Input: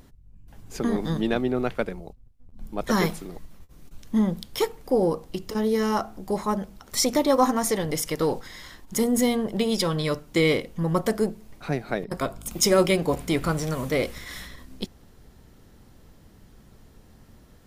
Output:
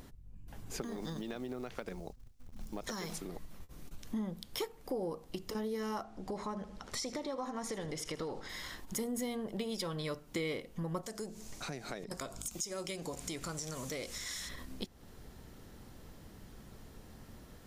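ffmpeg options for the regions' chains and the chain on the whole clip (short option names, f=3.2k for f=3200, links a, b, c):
-filter_complex "[0:a]asettb=1/sr,asplit=3[a][b][c];[a]atrim=end=0.814[d];[b]atrim=start=0.81:end=3.18,asetpts=PTS-STARTPTS,afade=t=in:d=0.004:c=qsin,afade=t=out:st=2.366:d=0.004:c=qsin,equalizer=f=5.9k:t=o:w=1:g=9,acompressor=threshold=-27dB:ratio=16:attack=3.2:release=140:knee=1:detection=peak,acrusher=bits=7:mode=log:mix=0:aa=0.000001[e];[c]atrim=start=3.176[f];[d][e]acrossfade=d=0.004:c1=hsin:c2=qsin[g];[g][f]acrossfade=d=0.004:c1=qsin:c2=hsin,asettb=1/sr,asplit=3[h][i][j];[h]atrim=end=6.034[k];[i]atrim=start=6.03:end=8.49,asetpts=PTS-STARTPTS,afade=t=in:d=0.004:c=qsin,afade=t=out:st=2.456:d=0.004:c=qsin,lowpass=7k,acompressor=threshold=-29dB:ratio=2:attack=3.2:release=140:knee=1:detection=peak,aecho=1:1:79|158|237|316:0.178|0.0694|0.027|0.0105,atrim=end_sample=108486[l];[j]atrim=start=8.486[m];[k][l]acrossfade=d=0.004:c1=hsin:c2=qsin[n];[n][m]acrossfade=d=0.004:c1=qsin:c2=hsin,asettb=1/sr,asplit=3[o][p][q];[o]atrim=end=11.034[r];[p]atrim=start=11.03:end=14.49,asetpts=PTS-STARTPTS,afade=t=in:d=0.004:c=qsin,afade=t=out:st=3.456:d=0.004:c=qsin,equalizer=f=6.7k:w=0.96:g=15,acompressor=threshold=-37dB:ratio=2:attack=3.2:release=140:knee=1:detection=peak[s];[q]atrim=start=14.486[t];[r][s]acrossfade=d=0.004:c1=hsin:c2=qsin[u];[u][t]acrossfade=d=0.004:c1=qsin:c2=hsin,lowshelf=f=220:g=-3,acompressor=threshold=-41dB:ratio=3,volume=1dB"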